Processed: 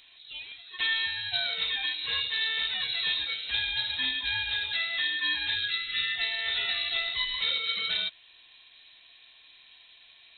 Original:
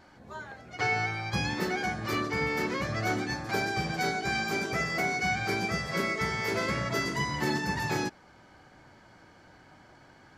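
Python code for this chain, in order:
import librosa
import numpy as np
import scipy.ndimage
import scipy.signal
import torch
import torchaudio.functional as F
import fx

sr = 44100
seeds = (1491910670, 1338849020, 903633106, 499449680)

y = fx.freq_invert(x, sr, carrier_hz=4000)
y = fx.spec_erase(y, sr, start_s=5.56, length_s=0.58, low_hz=500.0, high_hz=1200.0)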